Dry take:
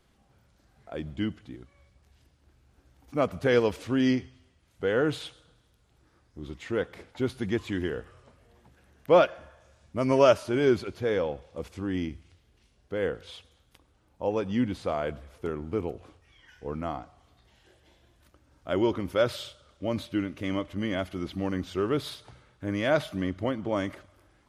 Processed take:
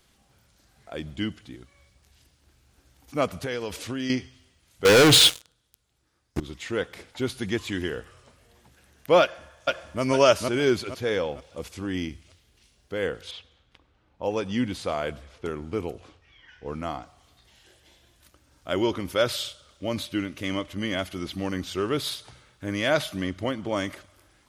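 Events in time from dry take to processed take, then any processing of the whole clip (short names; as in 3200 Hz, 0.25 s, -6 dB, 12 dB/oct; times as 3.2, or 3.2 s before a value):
3.41–4.1 compressor 12:1, threshold -27 dBFS
4.85–6.4 sample leveller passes 5
9.21–10.02 echo throw 0.46 s, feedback 35%, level -1 dB
13.31–16.84 low-pass opened by the level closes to 2700 Hz, open at -28.5 dBFS
whole clip: high shelf 2300 Hz +11 dB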